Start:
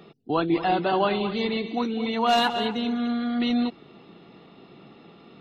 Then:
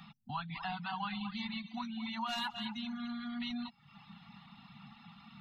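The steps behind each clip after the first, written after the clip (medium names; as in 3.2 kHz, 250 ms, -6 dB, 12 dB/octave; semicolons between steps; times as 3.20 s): reverb removal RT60 0.63 s; elliptic band-stop 220–830 Hz, stop band 40 dB; compression 2:1, threshold -44 dBFS, peak gain reduction 12 dB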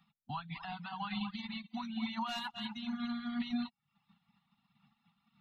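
peak limiter -32.5 dBFS, peak gain reduction 6.5 dB; upward expansion 2.5:1, over -56 dBFS; trim +6.5 dB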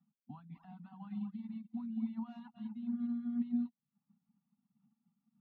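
band-pass filter 250 Hz, Q 2.5; trim +2 dB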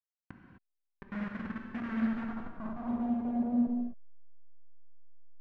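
send-on-delta sampling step -39 dBFS; low-pass sweep 1.8 kHz -> 210 Hz, 1.96–5.03 s; gated-style reverb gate 280 ms flat, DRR 1.5 dB; trim +2.5 dB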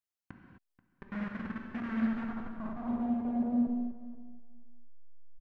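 feedback delay 483 ms, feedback 15%, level -18 dB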